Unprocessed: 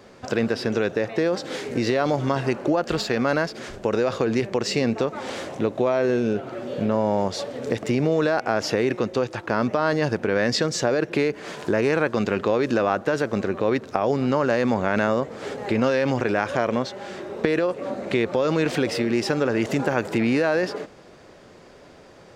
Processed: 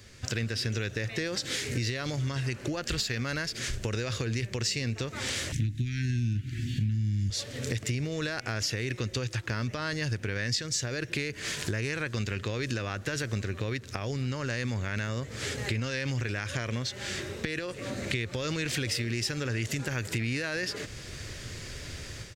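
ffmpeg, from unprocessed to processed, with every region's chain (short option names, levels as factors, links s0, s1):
-filter_complex "[0:a]asettb=1/sr,asplit=3[s0][s1][s2];[s0]atrim=end=5.524[s3];[s1]atrim=start=5.52:end=7.3,asetpts=PTS-STARTPTS,afade=t=in:d=0.004:c=qsin,afade=t=out:st=1.776:d=0.004:c=qsin,asuperstop=centerf=720:order=12:qfactor=0.55,lowshelf=f=240:g=11[s4];[s2]atrim=start=7.296[s5];[s3][s4]acrossfade=d=0.004:c1=hsin:c2=qsin[s6];[s6][s5]acrossfade=d=0.004:c1=qsin:c2=hsin,dynaudnorm=f=200:g=3:m=3.76,firequalizer=gain_entry='entry(110,0);entry(170,-15);entry(770,-25);entry(1800,-8);entry(4700,-4);entry(6900,-1)':delay=0.05:min_phase=1,acompressor=threshold=0.0141:ratio=4,volume=2.24"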